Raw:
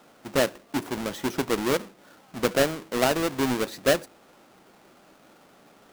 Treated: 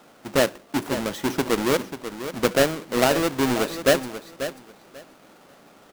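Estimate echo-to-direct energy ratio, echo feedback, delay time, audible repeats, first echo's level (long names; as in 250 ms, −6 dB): −11.0 dB, 19%, 539 ms, 2, −11.0 dB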